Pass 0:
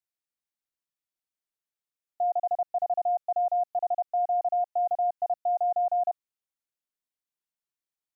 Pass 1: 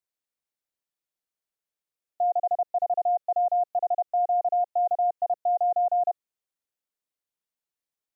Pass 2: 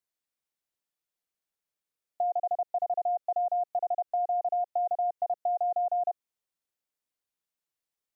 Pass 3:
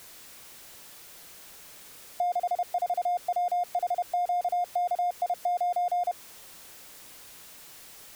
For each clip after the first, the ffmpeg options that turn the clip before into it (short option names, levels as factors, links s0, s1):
-af "equalizer=f=510:w=1.5:g=4.5"
-af "acompressor=threshold=0.0501:ratio=6"
-af "aeval=exprs='val(0)+0.5*0.00944*sgn(val(0))':c=same"